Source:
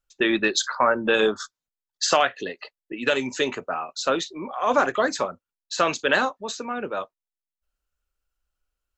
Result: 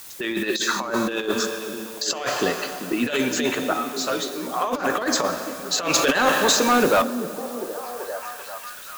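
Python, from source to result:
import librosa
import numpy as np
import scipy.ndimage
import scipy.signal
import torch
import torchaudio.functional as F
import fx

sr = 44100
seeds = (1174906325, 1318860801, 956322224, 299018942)

p1 = 10.0 ** (-23.5 / 20.0) * np.tanh(x / 10.0 ** (-23.5 / 20.0))
p2 = x + (p1 * 10.0 ** (-8.0 / 20.0))
p3 = fx.low_shelf(p2, sr, hz=450.0, db=6.0, at=(2.25, 3.07))
p4 = fx.stiff_resonator(p3, sr, f0_hz=60.0, decay_s=0.25, stiffness=0.002, at=(3.73, 4.52))
p5 = fx.rev_plate(p4, sr, seeds[0], rt60_s=2.3, hf_ratio=0.95, predelay_ms=0, drr_db=9.0)
p6 = fx.quant_dither(p5, sr, seeds[1], bits=8, dither='triangular')
p7 = fx.high_shelf(p6, sr, hz=4700.0, db=5.5)
p8 = fx.over_compress(p7, sr, threshold_db=-22.0, ratio=-0.5)
p9 = fx.leveller(p8, sr, passes=2, at=(5.94, 7.02))
y = fx.echo_stepped(p9, sr, ms=390, hz=210.0, octaves=0.7, feedback_pct=70, wet_db=-5.5)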